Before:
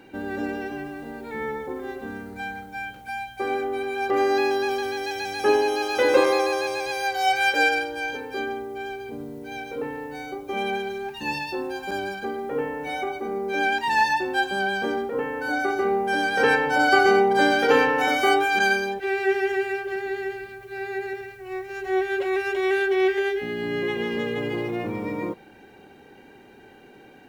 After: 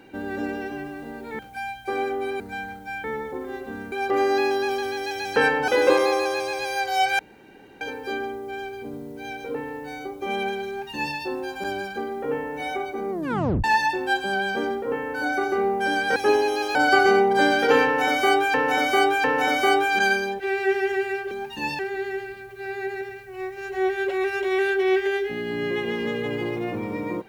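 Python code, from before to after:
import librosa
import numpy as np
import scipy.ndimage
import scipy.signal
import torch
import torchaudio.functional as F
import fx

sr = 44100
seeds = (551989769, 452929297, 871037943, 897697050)

y = fx.edit(x, sr, fx.swap(start_s=1.39, length_s=0.88, other_s=2.91, other_length_s=1.01),
    fx.swap(start_s=5.36, length_s=0.59, other_s=16.43, other_length_s=0.32),
    fx.room_tone_fill(start_s=7.46, length_s=0.62),
    fx.duplicate(start_s=10.95, length_s=0.48, to_s=19.91),
    fx.tape_stop(start_s=13.38, length_s=0.53),
    fx.repeat(start_s=17.84, length_s=0.7, count=3), tone=tone)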